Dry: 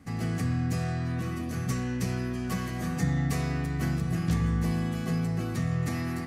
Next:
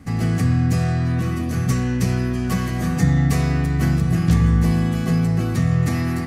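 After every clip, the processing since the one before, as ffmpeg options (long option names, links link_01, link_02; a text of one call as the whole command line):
ffmpeg -i in.wav -af "lowshelf=frequency=150:gain=5.5,volume=7.5dB" out.wav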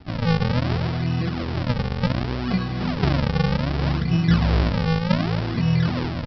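ffmpeg -i in.wav -af "flanger=delay=1.8:depth=4.8:regen=44:speed=1.3:shape=sinusoidal,aresample=11025,acrusher=samples=19:mix=1:aa=0.000001:lfo=1:lforange=30.4:lforate=0.66,aresample=44100,volume=1.5dB" out.wav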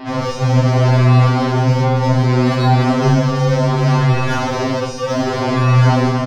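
ffmpeg -i in.wav -filter_complex "[0:a]asplit=2[link_01][link_02];[link_02]highpass=frequency=720:poles=1,volume=30dB,asoftclip=type=tanh:threshold=-7dB[link_03];[link_01][link_03]amix=inputs=2:normalize=0,lowpass=frequency=1200:poles=1,volume=-6dB,aecho=1:1:30|64.5|104.2|149.8|202.3:0.631|0.398|0.251|0.158|0.1,afftfilt=real='re*2.45*eq(mod(b,6),0)':imag='im*2.45*eq(mod(b,6),0)':win_size=2048:overlap=0.75,volume=3.5dB" out.wav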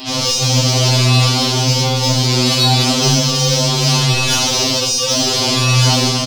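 ffmpeg -i in.wav -af "aexciter=amount=4.5:drive=10:freq=2700,volume=-2.5dB" out.wav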